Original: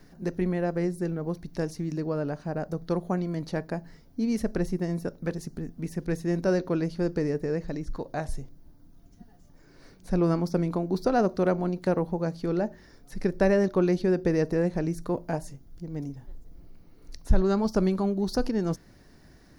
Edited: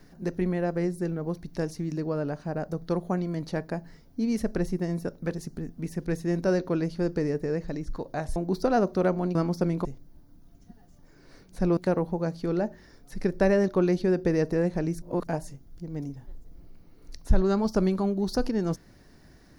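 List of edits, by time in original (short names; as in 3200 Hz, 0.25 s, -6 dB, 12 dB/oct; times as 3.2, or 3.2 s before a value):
8.36–10.28 swap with 10.78–11.77
15.02–15.27 reverse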